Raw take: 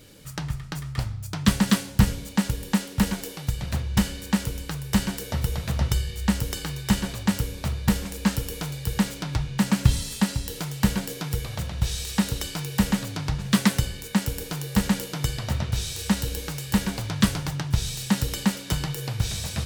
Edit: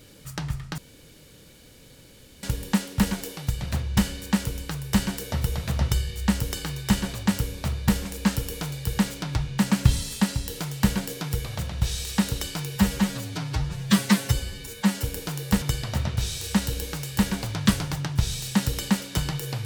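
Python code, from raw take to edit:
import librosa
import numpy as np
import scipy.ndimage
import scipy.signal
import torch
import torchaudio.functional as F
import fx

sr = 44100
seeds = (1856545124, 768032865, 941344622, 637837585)

y = fx.edit(x, sr, fx.room_tone_fill(start_s=0.78, length_s=1.65),
    fx.stretch_span(start_s=12.76, length_s=1.52, factor=1.5),
    fx.cut(start_s=14.86, length_s=0.31), tone=tone)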